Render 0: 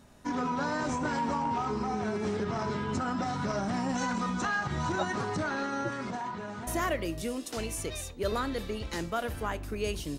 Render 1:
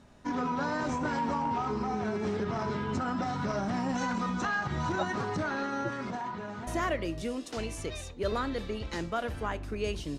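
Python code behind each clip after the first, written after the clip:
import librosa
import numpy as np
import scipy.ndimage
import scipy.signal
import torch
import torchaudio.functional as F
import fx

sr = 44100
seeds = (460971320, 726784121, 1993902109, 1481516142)

y = fx.air_absorb(x, sr, metres=61.0)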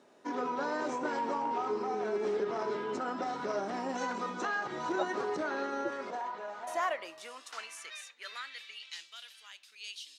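y = fx.filter_sweep_highpass(x, sr, from_hz=390.0, to_hz=3500.0, start_s=5.81, end_s=9.18, q=2.0)
y = F.gain(torch.from_numpy(y), -3.5).numpy()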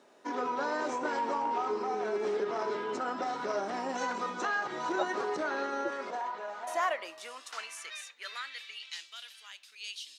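y = fx.low_shelf(x, sr, hz=220.0, db=-9.5)
y = F.gain(torch.from_numpy(y), 2.5).numpy()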